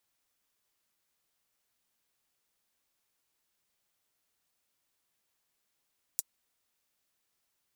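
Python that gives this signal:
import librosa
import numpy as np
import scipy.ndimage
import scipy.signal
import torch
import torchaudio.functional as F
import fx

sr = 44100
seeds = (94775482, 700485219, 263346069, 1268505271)

y = fx.drum_hat(sr, length_s=0.24, from_hz=6800.0, decay_s=0.04)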